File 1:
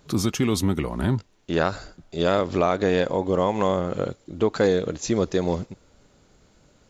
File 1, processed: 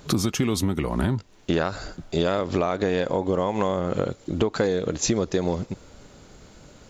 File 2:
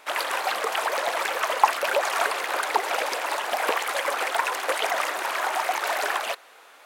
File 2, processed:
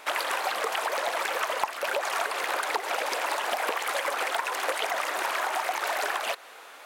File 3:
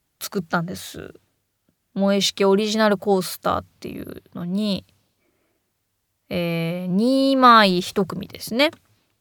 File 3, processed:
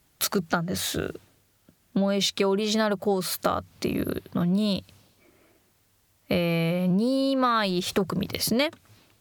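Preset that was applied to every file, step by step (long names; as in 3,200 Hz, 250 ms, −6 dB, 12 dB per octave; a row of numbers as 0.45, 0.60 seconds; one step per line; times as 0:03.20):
downward compressor 8 to 1, threshold −29 dBFS
normalise the peak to −9 dBFS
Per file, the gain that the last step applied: +9.5, +4.0, +7.5 decibels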